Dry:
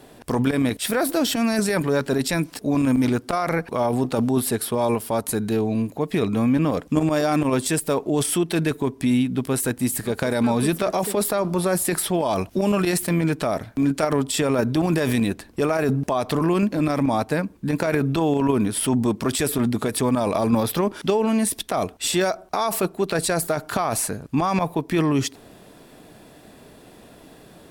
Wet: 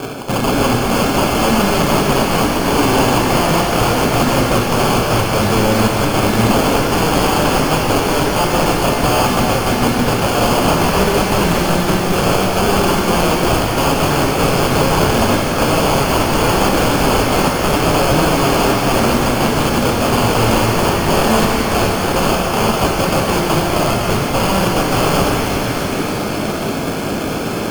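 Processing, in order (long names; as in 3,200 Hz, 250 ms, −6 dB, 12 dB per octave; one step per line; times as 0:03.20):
high-pass filter 66 Hz 12 dB per octave
mains-hum notches 60/120/180/240/300/360/420 Hz
reversed playback
downward compressor 4 to 1, threshold −34 dBFS, peak gain reduction 15.5 dB
reversed playback
Savitzky-Golay smoothing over 25 samples
transient designer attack +4 dB, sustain −3 dB
decimation without filtering 23×
wrap-around overflow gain 30.5 dB
boost into a limiter +35 dB
reverb with rising layers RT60 4 s, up +12 semitones, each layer −8 dB, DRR −1 dB
level −11.5 dB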